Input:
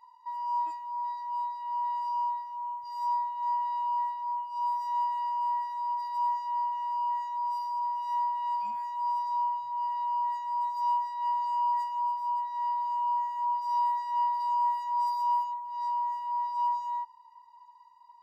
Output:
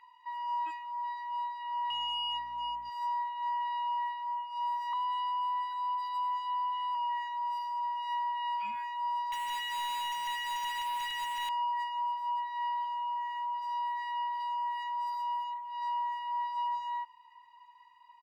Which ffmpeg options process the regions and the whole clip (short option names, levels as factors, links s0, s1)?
-filter_complex "[0:a]asettb=1/sr,asplit=3[s0][s1][s2];[s0]atrim=end=1.904[s3];[s1]atrim=start=1.9:end=2.9,asetpts=PTS-STARTPTS,afade=t=in:d=0.004:c=qsin,afade=t=out:st=0.996:d=0.004:c=qsin,asoftclip=type=hard:threshold=0.0211,aeval=exprs='val(0)+0.000794*(sin(2*PI*60*n/s)+sin(2*PI*2*60*n/s)/2+sin(2*PI*3*60*n/s)/3+sin(2*PI*4*60*n/s)/4+sin(2*PI*5*60*n/s)/5)':c=same,aecho=1:1:4.2:0.4,atrim=end_sample=44100[s4];[s2]atrim=start=2.896[s5];[s3][s4]acrossfade=d=0.004:c1=hsin:c2=qsin[s6];[s6][s5]acrossfade=d=0.004:c1=qsin:c2=hsin,asettb=1/sr,asplit=3[s7][s8][s9];[s7]atrim=end=4.934[s10];[s8]atrim=start=4.93:end=6.95,asetpts=PTS-STARTPTS,afade=t=in:d=0.004:c=qsin,afade=t=out:st=2.016:d=0.004:c=qsin,highpass=f=360:p=1,aecho=1:1:3.4:0.6,atrim=end_sample=89082,afreqshift=27[s11];[s9]atrim=start=6.946[s12];[s10][s11]acrossfade=d=0.004:c1=hsin:c2=qsin[s13];[s13][s12]acrossfade=d=0.004:c1=qsin:c2=hsin,asettb=1/sr,asplit=3[s14][s15][s16];[s14]atrim=end=9.324[s17];[s15]atrim=start=9.32:end=11.49,asetpts=PTS-STARTPTS,afade=t=in:d=0.004:c=qsin,afade=t=out:st=2.166:d=0.004:c=qsin,highpass=330,acrusher=bits=7:dc=4:mix=0:aa=0.000001[s18];[s16]atrim=start=11.486[s19];[s17][s18]acrossfade=d=0.004:c1=hsin:c2=qsin[s20];[s20][s19]acrossfade=d=0.004:c1=qsin:c2=hsin,asettb=1/sr,asplit=3[s21][s22][s23];[s21]atrim=end=12.844[s24];[s22]atrim=start=12.84:end=15.82,asetpts=PTS-STARTPTS,afade=t=in:d=0.004:c=qsin,afade=t=out:st=2.976:d=0.004:c=qsin,bass=f=250:g=-5,treble=f=4000:g=-1,acompressor=threshold=0.0251:ratio=2:attack=3.2:release=140:knee=1:detection=peak[s25];[s23]atrim=start=15.816[s26];[s24][s25]acrossfade=d=0.004:c1=hsin:c2=qsin[s27];[s27][s26]acrossfade=d=0.004:c1=qsin:c2=hsin,firequalizer=gain_entry='entry(430,0);entry(690,-11);entry(1400,10);entry(2600,15);entry(4900,-4)':delay=0.05:min_phase=1,alimiter=level_in=1.68:limit=0.0631:level=0:latency=1:release=16,volume=0.596"